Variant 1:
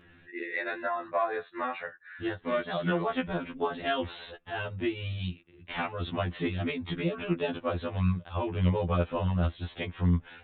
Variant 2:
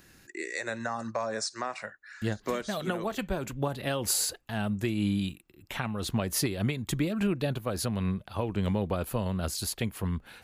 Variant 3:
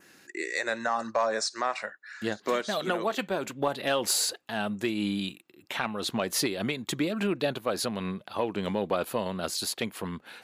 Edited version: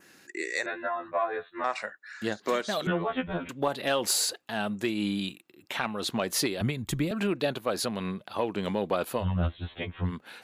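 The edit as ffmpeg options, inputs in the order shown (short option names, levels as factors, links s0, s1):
-filter_complex "[0:a]asplit=3[s0][s1][s2];[2:a]asplit=5[s3][s4][s5][s6][s7];[s3]atrim=end=0.662[s8];[s0]atrim=start=0.658:end=1.642[s9];[s4]atrim=start=1.638:end=2.872[s10];[s1]atrim=start=2.868:end=3.492[s11];[s5]atrim=start=3.488:end=6.612[s12];[1:a]atrim=start=6.608:end=7.112[s13];[s6]atrim=start=7.108:end=9.26[s14];[s2]atrim=start=9.16:end=10.13[s15];[s7]atrim=start=10.03[s16];[s8][s9]acrossfade=d=0.004:c1=hsin:c2=hsin[s17];[s17][s10]acrossfade=d=0.004:c1=hsin:c2=hsin[s18];[s18][s11]acrossfade=d=0.004:c1=hsin:c2=hsin[s19];[s19][s12]acrossfade=d=0.004:c1=hsin:c2=hsin[s20];[s20][s13]acrossfade=d=0.004:c1=hsin:c2=hsin[s21];[s21][s14]acrossfade=d=0.004:c1=hsin:c2=hsin[s22];[s22][s15]acrossfade=d=0.1:c1=tri:c2=tri[s23];[s23][s16]acrossfade=d=0.1:c1=tri:c2=tri"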